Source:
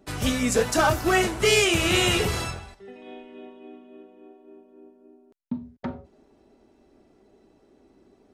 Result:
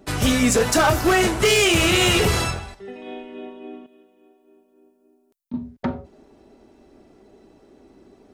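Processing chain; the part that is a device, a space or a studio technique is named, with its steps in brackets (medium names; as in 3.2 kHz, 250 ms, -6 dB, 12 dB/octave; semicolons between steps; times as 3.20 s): 3.86–5.54 s: pre-emphasis filter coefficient 0.8; limiter into clipper (peak limiter -14 dBFS, peak gain reduction 5.5 dB; hard clipper -19.5 dBFS, distortion -16 dB); trim +7 dB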